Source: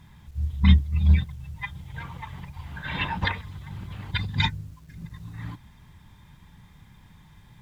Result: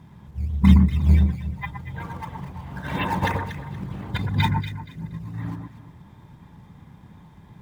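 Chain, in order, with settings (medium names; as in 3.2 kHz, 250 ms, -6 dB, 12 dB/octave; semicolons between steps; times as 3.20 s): high-pass 420 Hz 6 dB/octave; tilt shelf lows +10 dB; in parallel at -10.5 dB: decimation with a swept rate 11×, swing 160% 2.9 Hz; on the sum: echo whose repeats swap between lows and highs 118 ms, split 1.6 kHz, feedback 51%, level -4 dB; trim +3 dB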